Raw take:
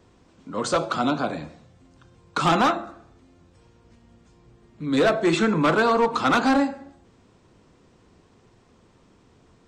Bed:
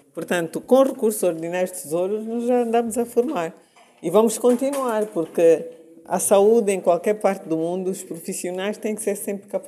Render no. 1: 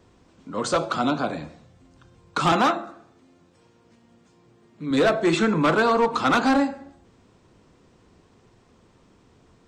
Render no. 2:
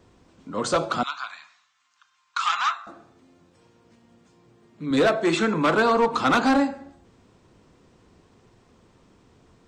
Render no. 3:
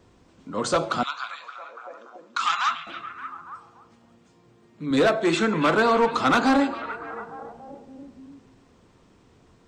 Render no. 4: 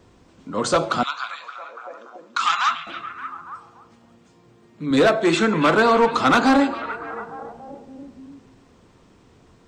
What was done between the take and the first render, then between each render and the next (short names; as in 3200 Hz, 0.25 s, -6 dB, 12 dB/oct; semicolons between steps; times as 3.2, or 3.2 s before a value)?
2.52–4.91 HPF 150 Hz
1.03–2.87 elliptic band-pass 1100–7200 Hz; 5.07–5.74 low shelf 160 Hz -8 dB
delay with a stepping band-pass 0.286 s, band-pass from 2600 Hz, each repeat -0.7 oct, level -9 dB
gain +3.5 dB